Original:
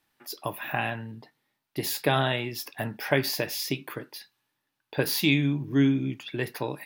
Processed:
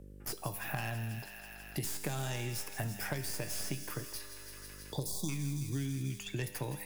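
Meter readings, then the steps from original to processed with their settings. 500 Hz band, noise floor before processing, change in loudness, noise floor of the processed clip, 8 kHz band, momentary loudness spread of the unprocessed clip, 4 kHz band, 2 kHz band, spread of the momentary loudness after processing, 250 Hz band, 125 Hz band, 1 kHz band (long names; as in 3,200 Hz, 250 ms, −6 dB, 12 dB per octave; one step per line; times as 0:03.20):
−13.5 dB, −82 dBFS, −11.0 dB, −50 dBFS, −2.0 dB, 16 LU, −12.0 dB, −11.5 dB, 7 LU, −13.5 dB, −5.5 dB, −12.0 dB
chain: stylus tracing distortion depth 0.1 ms
noise gate with hold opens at −42 dBFS
healed spectral selection 0:04.51–0:05.26, 1,100–3,300 Hz before
octave-band graphic EQ 125/250/500/1,000/2,000/4,000/8,000 Hz +4/−6/−6/−6/−5/−9/+7 dB
downward compressor, threshold −31 dBFS, peak gain reduction 11 dB
tuned comb filter 100 Hz, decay 1.7 s, harmonics all, mix 70%
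hum with harmonics 50 Hz, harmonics 11, −75 dBFS −7 dB per octave
delay with a high-pass on its return 163 ms, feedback 70%, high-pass 1,500 Hz, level −12.5 dB
multiband upward and downward compressor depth 70%
level +8 dB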